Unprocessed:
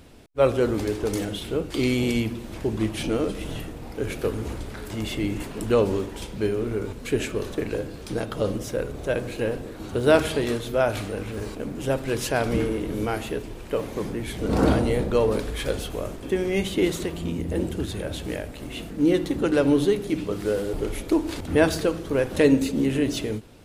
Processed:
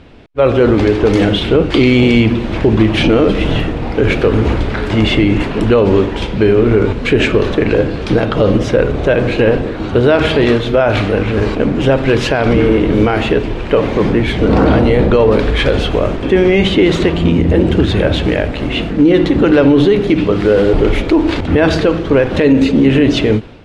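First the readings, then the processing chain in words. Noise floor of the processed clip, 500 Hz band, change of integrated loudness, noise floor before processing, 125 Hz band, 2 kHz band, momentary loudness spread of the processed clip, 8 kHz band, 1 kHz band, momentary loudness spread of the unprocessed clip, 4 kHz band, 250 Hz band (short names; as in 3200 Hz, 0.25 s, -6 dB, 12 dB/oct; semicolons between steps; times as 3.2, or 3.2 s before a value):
-21 dBFS, +12.5 dB, +13.0 dB, -38 dBFS, +15.0 dB, +14.0 dB, 5 LU, n/a, +12.5 dB, 11 LU, +14.0 dB, +13.5 dB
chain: Chebyshev low-pass 2900 Hz, order 2; AGC gain up to 9.5 dB; maximiser +11 dB; gain -1 dB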